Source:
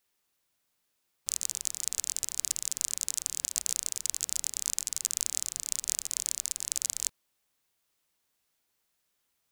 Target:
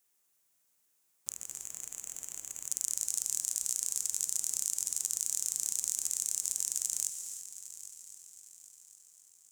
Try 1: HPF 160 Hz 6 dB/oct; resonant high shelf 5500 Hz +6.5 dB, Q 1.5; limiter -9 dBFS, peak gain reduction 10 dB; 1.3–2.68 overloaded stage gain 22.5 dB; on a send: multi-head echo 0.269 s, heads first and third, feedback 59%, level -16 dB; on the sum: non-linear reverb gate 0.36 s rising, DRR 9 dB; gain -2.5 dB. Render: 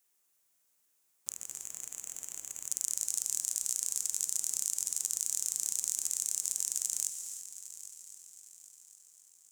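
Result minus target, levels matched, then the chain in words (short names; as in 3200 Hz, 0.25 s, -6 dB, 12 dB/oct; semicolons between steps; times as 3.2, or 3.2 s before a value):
125 Hz band -2.5 dB
HPF 77 Hz 6 dB/oct; resonant high shelf 5500 Hz +6.5 dB, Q 1.5; limiter -9 dBFS, peak gain reduction 10 dB; 1.3–2.68 overloaded stage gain 22.5 dB; on a send: multi-head echo 0.269 s, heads first and third, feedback 59%, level -16 dB; on the sum: non-linear reverb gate 0.36 s rising, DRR 9 dB; gain -2.5 dB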